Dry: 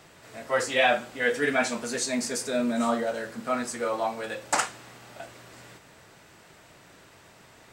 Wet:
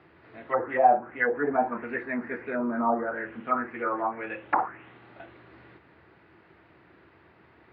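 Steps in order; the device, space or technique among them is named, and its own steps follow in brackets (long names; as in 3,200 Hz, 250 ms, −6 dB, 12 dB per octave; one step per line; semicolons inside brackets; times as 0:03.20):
envelope filter bass rig (envelope-controlled low-pass 780–4,900 Hz down, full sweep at −20.5 dBFS; loudspeaker in its box 67–2,200 Hz, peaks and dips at 73 Hz +10 dB, 340 Hz +9 dB, 600 Hz −4 dB)
level −4 dB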